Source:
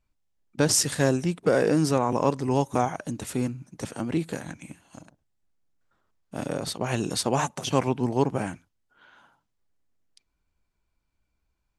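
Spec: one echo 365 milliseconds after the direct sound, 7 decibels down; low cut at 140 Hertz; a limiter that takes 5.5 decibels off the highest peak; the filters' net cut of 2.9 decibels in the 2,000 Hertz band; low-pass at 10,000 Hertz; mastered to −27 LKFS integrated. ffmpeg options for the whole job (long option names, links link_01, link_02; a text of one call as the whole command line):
ffmpeg -i in.wav -af "highpass=140,lowpass=10000,equalizer=frequency=2000:width_type=o:gain=-4,alimiter=limit=-14.5dB:level=0:latency=1,aecho=1:1:365:0.447,volume=1dB" out.wav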